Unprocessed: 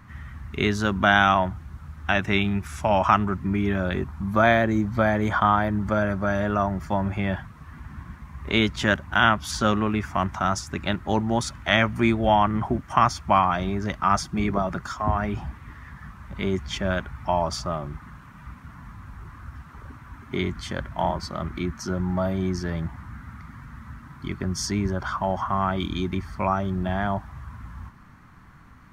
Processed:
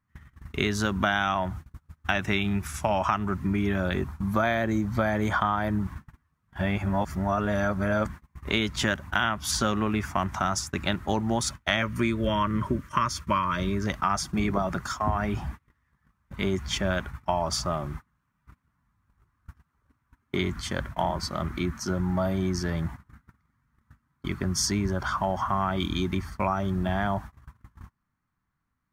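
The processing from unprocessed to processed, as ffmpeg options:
-filter_complex "[0:a]asettb=1/sr,asplit=3[a][b][c];[a]atrim=end=11.824[d];[b]atrim=start=11.82:end=13.87,asetpts=PTS-STARTPTS,afade=t=in:d=0.004:c=qsin,afade=t=out:st=2.046:d=0.004:c=qsin,asuperstop=centerf=760:order=8:qfactor=2.6[e];[c]atrim=start=13.866[f];[d][e]acrossfade=d=0.004:c1=hsin:c2=qsin[g];[g][f]acrossfade=d=0.004:c1=qsin:c2=hsin,asplit=3[h][i][j];[h]atrim=end=5.872[k];[i]atrim=start=5.868:end=8.082,asetpts=PTS-STARTPTS,areverse[l];[j]atrim=start=8.078[m];[k][l]acrossfade=d=0.004:c1=hsin:c2=hsin[n];[n][m]acrossfade=d=0.004:c1=hsin:c2=hsin,agate=range=-30dB:threshold=-35dB:ratio=16:detection=peak,highshelf=f=5.8k:g=8.5,acompressor=threshold=-21dB:ratio=6"

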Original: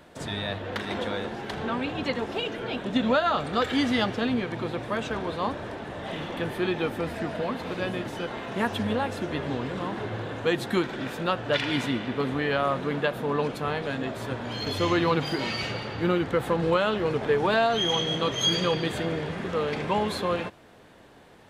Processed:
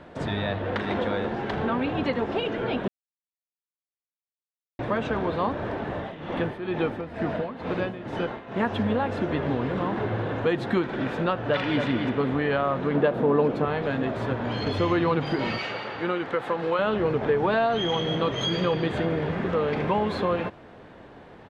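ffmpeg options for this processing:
-filter_complex "[0:a]asettb=1/sr,asplit=3[a][b][c];[a]atrim=end=5.944[d];[b]atrim=start=5.94:end=8.63,asetpts=PTS-STARTPTS,afade=t=in:d=0.004:c=qsin,afade=t=out:st=2.686:d=0.004:c=qsin,tremolo=f=2.2:d=0.79[e];[c]atrim=start=8.626[f];[d][e]acrossfade=d=0.004:c1=hsin:c2=qsin[g];[g][f]acrossfade=d=0.004:c1=qsin:c2=hsin,asplit=2[h][i];[i]afade=t=in:st=11.29:d=0.01,afade=t=out:st=11.82:d=0.01,aecho=0:1:270|540|810:0.473151|0.0709727|0.0106459[j];[h][j]amix=inputs=2:normalize=0,asettb=1/sr,asplit=3[k][l][m];[k]atrim=end=12.954[n];[l]atrim=start=12.95:end=13.65,asetpts=PTS-STARTPTS,afade=t=in:d=0.004:c=qsin,afade=t=out:st=0.696:d=0.004:c=qsin,equalizer=f=360:w=0.49:g=8[o];[m]atrim=start=13.646[p];[n][o]acrossfade=d=0.004:c1=hsin:c2=qsin[q];[q][p]acrossfade=d=0.004:c1=qsin:c2=hsin,asettb=1/sr,asplit=3[r][s][t];[r]atrim=end=15.584[u];[s]atrim=start=15.58:end=16.79,asetpts=PTS-STARTPTS,afade=t=in:d=0.004:c=qsin,afade=t=out:st=1.206:d=0.004:c=qsin,highpass=f=760:p=1[v];[t]atrim=start=16.786[w];[u][v]acrossfade=d=0.004:c1=hsin:c2=qsin[x];[x][w]acrossfade=d=0.004:c1=qsin:c2=hsin,asplit=3[y][z][aa];[y]atrim=end=2.88,asetpts=PTS-STARTPTS,afade=t=out:st=2.876:d=0.004:c=hsin[ab];[z]atrim=start=2.88:end=4.79,asetpts=PTS-STARTPTS,volume=0[ac];[aa]atrim=start=4.79,asetpts=PTS-STARTPTS,afade=t=in:d=0.004:c=hsin[ad];[ab][ac][ad]concat=n=3:v=0:a=1,highshelf=f=6.9k:g=-9.5,acompressor=threshold=-30dB:ratio=2,aemphasis=mode=reproduction:type=75kf,volume=6.5dB"

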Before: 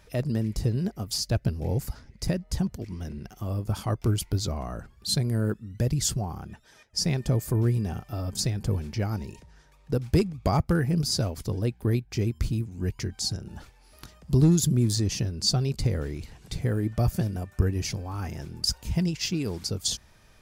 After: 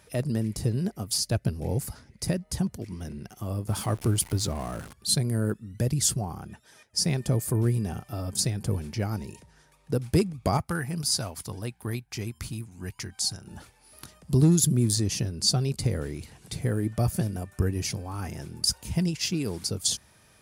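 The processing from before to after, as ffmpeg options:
-filter_complex "[0:a]asettb=1/sr,asplit=3[a][b][c];[a]atrim=end=3.684[d];[b]atrim=start=3.68:end=4.93,asetpts=PTS-STARTPTS,afade=t=in:d=0.004:c=qsin,afade=t=out:st=1.246:d=0.004:c=qsin,aeval=exprs='val(0)+0.5*0.0119*sgn(val(0))':c=same[e];[c]atrim=start=4.926[f];[d][e]acrossfade=d=0.004:c1=hsin:c2=qsin[g];[g][f]acrossfade=d=0.004:c1=qsin:c2=hsin,asettb=1/sr,asplit=3[h][i][j];[h]atrim=end=10.574[k];[i]atrim=start=10.57:end=13.48,asetpts=PTS-STARTPTS,afade=t=in:d=0.004:c=qsin,afade=t=out:st=2.906:d=0.004:c=qsin,lowshelf=f=640:t=q:w=1.5:g=-6.5[l];[j]atrim=start=13.476[m];[k][l]acrossfade=d=0.004:c1=hsin:c2=qsin[n];[n][m]acrossfade=d=0.004:c1=qsin:c2=hsin,highpass=82,equalizer=f=9.8k:t=o:w=0.49:g=10"

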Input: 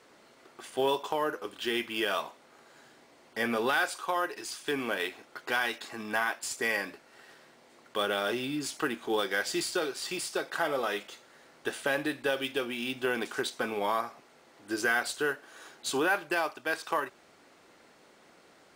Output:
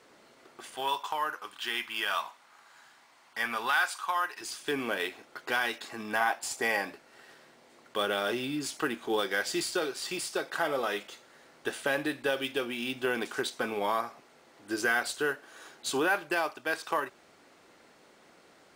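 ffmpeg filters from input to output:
-filter_complex "[0:a]asettb=1/sr,asplit=3[a][b][c];[a]atrim=end=0.754[d];[b]atrim=start=0.75:end=4.41,asetpts=PTS-STARTPTS,afade=t=in:d=0.004:c=qsin,afade=t=out:st=3.656:d=0.004:c=qsin,lowshelf=f=680:t=q:w=1.5:g=-10.5[e];[c]atrim=start=4.406[f];[d][e]acrossfade=d=0.004:c1=hsin:c2=qsin[g];[g][f]acrossfade=d=0.004:c1=qsin:c2=hsin,asettb=1/sr,asplit=3[h][i][j];[h]atrim=end=6.204[k];[i]atrim=start=6.2:end=6.93,asetpts=PTS-STARTPTS,afade=t=in:d=0.004:c=qsin,afade=t=out:st=0.726:d=0.004:c=qsin,equalizer=f=780:w=3.2:g=9.5[l];[j]atrim=start=6.926[m];[k][l]acrossfade=d=0.004:c1=hsin:c2=qsin[n];[n][m]acrossfade=d=0.004:c1=qsin:c2=hsin"

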